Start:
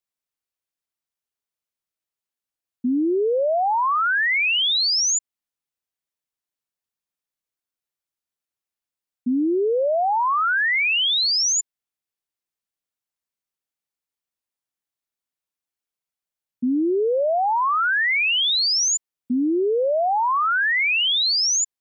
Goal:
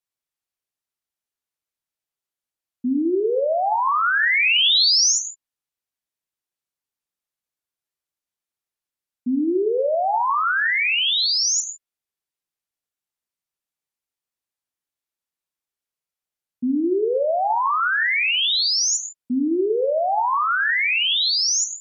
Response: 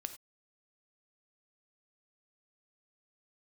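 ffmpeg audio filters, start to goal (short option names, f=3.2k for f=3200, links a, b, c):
-filter_complex "[0:a]asettb=1/sr,asplit=3[a][b][c];[a]atrim=end=3.844[d];[b]atrim=start=3.84:end=5.12,asetpts=PTS-STARTPTS,afade=t=in:d=0.004:c=qsin,afade=t=out:st=1.276:d=0.004:c=qsin,equalizer=f=4.4k:t=o:w=2.2:g=4[e];[c]atrim=start=5.116[f];[d][e]acrossfade=d=0.004:c1=hsin:c2=qsin[g];[g][f]acrossfade=d=0.004:c1=qsin:c2=hsin[h];[1:a]atrim=start_sample=2205,asetrate=29547,aresample=44100[i];[h][i]afir=irnorm=-1:irlink=0"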